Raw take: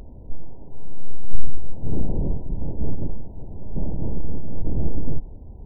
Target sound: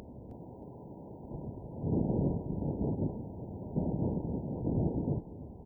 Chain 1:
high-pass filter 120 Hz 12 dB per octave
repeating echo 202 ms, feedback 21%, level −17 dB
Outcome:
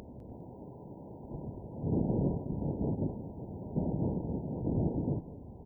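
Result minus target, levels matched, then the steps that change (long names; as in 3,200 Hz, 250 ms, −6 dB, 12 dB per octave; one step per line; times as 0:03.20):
echo 111 ms early
change: repeating echo 313 ms, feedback 21%, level −17 dB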